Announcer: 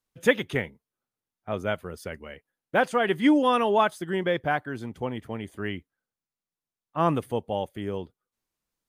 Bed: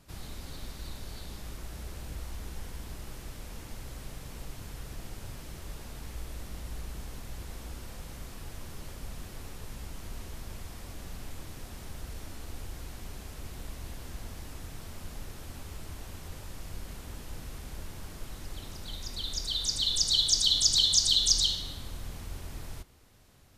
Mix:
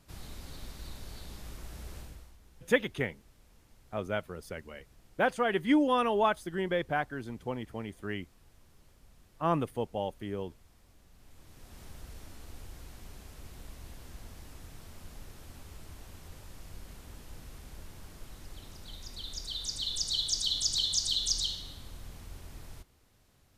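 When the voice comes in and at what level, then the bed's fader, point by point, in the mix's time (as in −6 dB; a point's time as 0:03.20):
2.45 s, −5.0 dB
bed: 0:01.99 −3 dB
0:02.38 −18.5 dB
0:11.11 −18.5 dB
0:11.81 −6 dB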